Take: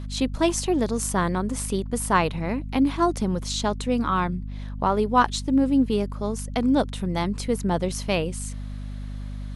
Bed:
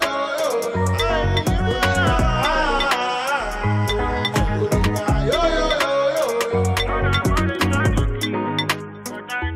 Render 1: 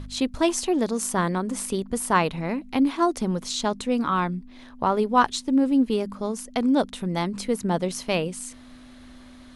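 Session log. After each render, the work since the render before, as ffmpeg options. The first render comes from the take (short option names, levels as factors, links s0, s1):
-af "bandreject=f=50:t=h:w=4,bandreject=f=100:t=h:w=4,bandreject=f=150:t=h:w=4,bandreject=f=200:t=h:w=4"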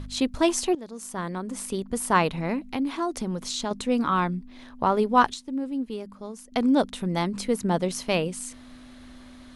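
-filter_complex "[0:a]asettb=1/sr,asplit=3[s0][s1][s2];[s0]atrim=end=2.744[s3];[s1]atrim=start=2.74:end=3.71,asetpts=PTS-STARTPTS,afade=t=in:d=0.004:c=qsin,afade=t=out:st=0.966:d=0.004:c=qsin,acompressor=threshold=0.0398:ratio=2:attack=3.2:release=140:knee=1:detection=peak[s4];[s2]atrim=start=3.706[s5];[s3][s4]acrossfade=d=0.004:c1=hsin:c2=qsin[s6];[s6][s5]acrossfade=d=0.004:c1=qsin:c2=hsin,asplit=4[s7][s8][s9][s10];[s7]atrim=end=0.75,asetpts=PTS-STARTPTS,afade=t=out:st=0.746:d=0.004:c=hsin:silence=0.11885[s11];[s8]atrim=start=0.75:end=5.342,asetpts=PTS-STARTPTS,afade=t=in:d=1.47:silence=0.11885[s12];[s9]atrim=start=5.338:end=6.522,asetpts=PTS-STARTPTS,volume=0.335[s13];[s10]atrim=start=6.518[s14];[s11][s12]concat=n=2:v=0:a=1[s15];[s15][s13]acrossfade=d=0.004:c1=hsin:c2=hsin[s16];[s16][s14]acrossfade=d=0.004:c1=hsin:c2=hsin"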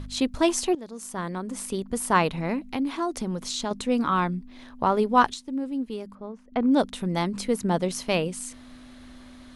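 -filter_complex "[0:a]asplit=3[s0][s1][s2];[s0]afade=t=out:st=6.14:d=0.02[s3];[s1]lowpass=1900,afade=t=in:st=6.14:d=0.02,afade=t=out:st=6.7:d=0.02[s4];[s2]afade=t=in:st=6.7:d=0.02[s5];[s3][s4][s5]amix=inputs=3:normalize=0"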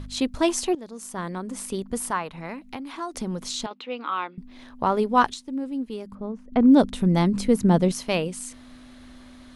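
-filter_complex "[0:a]asettb=1/sr,asplit=3[s0][s1][s2];[s0]atrim=end=2.084[s3];[s1]atrim=start=2.08:end=3.15,asetpts=PTS-STARTPTS,afade=t=in:d=0.004:c=qsin,afade=t=out:st=1.066:d=0.004:c=qsin,acrossover=split=820|1700[s4][s5][s6];[s4]acompressor=threshold=0.0158:ratio=4[s7];[s5]acompressor=threshold=0.0631:ratio=4[s8];[s6]acompressor=threshold=0.00708:ratio=4[s9];[s7][s8][s9]amix=inputs=3:normalize=0[s10];[s2]atrim=start=3.146[s11];[s3][s10]acrossfade=d=0.004:c1=hsin:c2=qsin[s12];[s12][s11]acrossfade=d=0.004:c1=qsin:c2=hsin,asettb=1/sr,asplit=3[s13][s14][s15];[s13]atrim=end=3.664[s16];[s14]atrim=start=3.66:end=4.38,asetpts=PTS-STARTPTS,afade=t=in:d=0.004:c=qsin,afade=t=out:st=0.716:d=0.004:c=qsin,highpass=f=360:w=0.5412,highpass=f=360:w=1.3066,equalizer=f=400:t=q:w=4:g=-10,equalizer=f=630:t=q:w=4:g=-10,equalizer=f=1000:t=q:w=4:g=-4,equalizer=f=1700:t=q:w=4:g=-7,equalizer=f=2800:t=q:w=4:g=3,lowpass=f=3600:w=0.5412,lowpass=f=3600:w=1.3066[s17];[s15]atrim=start=4.376[s18];[s16][s17]acrossfade=d=0.004:c1=hsin:c2=qsin[s19];[s19][s18]acrossfade=d=0.004:c1=qsin:c2=hsin,asettb=1/sr,asplit=3[s20][s21][s22];[s20]atrim=end=6.124[s23];[s21]atrim=start=6.12:end=7.92,asetpts=PTS-STARTPTS,afade=t=in:d=0.004:c=qsin,afade=t=out:st=1.796:d=0.004:c=qsin,lowshelf=f=340:g=10.5[s24];[s22]atrim=start=7.916[s25];[s23][s24]acrossfade=d=0.004:c1=hsin:c2=qsin[s26];[s26][s25]acrossfade=d=0.004:c1=qsin:c2=hsin"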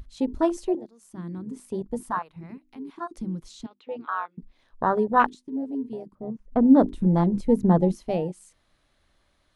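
-af "bandreject=f=50:t=h:w=6,bandreject=f=100:t=h:w=6,bandreject=f=150:t=h:w=6,bandreject=f=200:t=h:w=6,bandreject=f=250:t=h:w=6,bandreject=f=300:t=h:w=6,bandreject=f=350:t=h:w=6,afwtdn=0.0562"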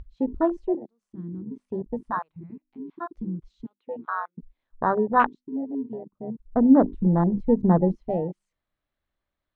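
-af "afwtdn=0.0355,lowpass=3200"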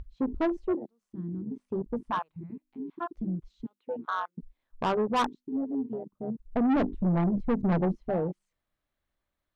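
-af "asoftclip=type=tanh:threshold=0.0841"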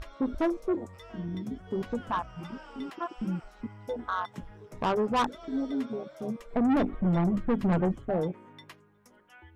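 -filter_complex "[1:a]volume=0.0355[s0];[0:a][s0]amix=inputs=2:normalize=0"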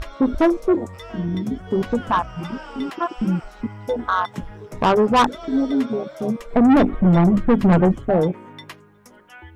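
-af "volume=3.55"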